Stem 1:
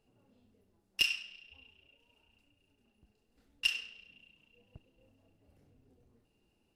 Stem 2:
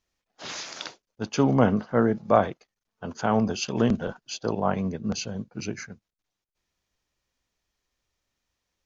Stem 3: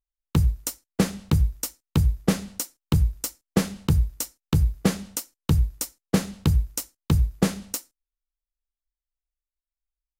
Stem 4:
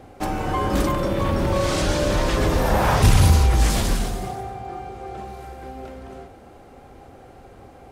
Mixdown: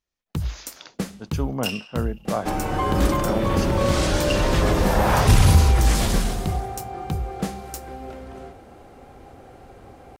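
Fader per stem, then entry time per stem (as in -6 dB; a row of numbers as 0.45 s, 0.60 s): -0.5 dB, -7.0 dB, -6.5 dB, 0.0 dB; 0.65 s, 0.00 s, 0.00 s, 2.25 s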